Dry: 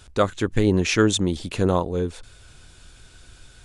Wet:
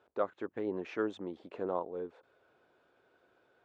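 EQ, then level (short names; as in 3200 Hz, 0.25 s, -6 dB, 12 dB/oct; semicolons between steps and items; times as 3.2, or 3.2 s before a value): dynamic EQ 460 Hz, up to -6 dB, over -32 dBFS, Q 1.1; ladder band-pass 610 Hz, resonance 25%; +3.0 dB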